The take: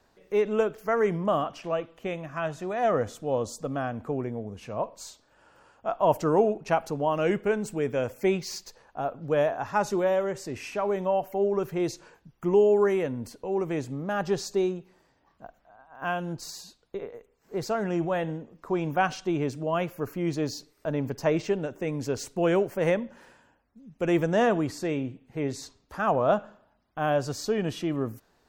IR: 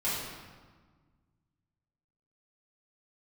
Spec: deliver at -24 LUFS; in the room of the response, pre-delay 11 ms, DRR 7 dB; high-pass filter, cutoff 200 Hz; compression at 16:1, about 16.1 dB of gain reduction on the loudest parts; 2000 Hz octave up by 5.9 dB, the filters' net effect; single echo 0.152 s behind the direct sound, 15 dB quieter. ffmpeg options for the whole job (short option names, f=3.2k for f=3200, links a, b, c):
-filter_complex "[0:a]highpass=200,equalizer=f=2k:t=o:g=8,acompressor=threshold=-33dB:ratio=16,aecho=1:1:152:0.178,asplit=2[a][b];[1:a]atrim=start_sample=2205,adelay=11[c];[b][c]afir=irnorm=-1:irlink=0,volume=-15dB[d];[a][d]amix=inputs=2:normalize=0,volume=14dB"